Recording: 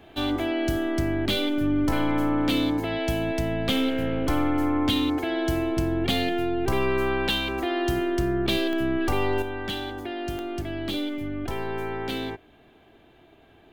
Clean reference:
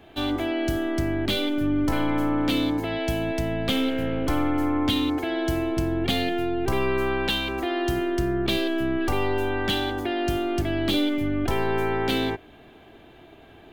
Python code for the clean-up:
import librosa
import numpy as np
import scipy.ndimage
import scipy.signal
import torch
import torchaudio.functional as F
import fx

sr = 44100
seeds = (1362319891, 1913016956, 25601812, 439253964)

y = fx.fix_declip(x, sr, threshold_db=-15.0)
y = fx.fix_declick_ar(y, sr, threshold=10.0)
y = fx.gain(y, sr, db=fx.steps((0.0, 0.0), (9.42, 6.0)))